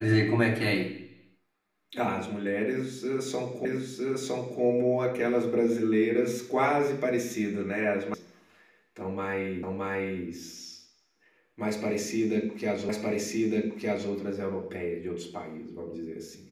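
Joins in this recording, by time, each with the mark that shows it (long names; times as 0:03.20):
0:03.65: the same again, the last 0.96 s
0:08.14: cut off before it has died away
0:09.63: the same again, the last 0.62 s
0:12.89: the same again, the last 1.21 s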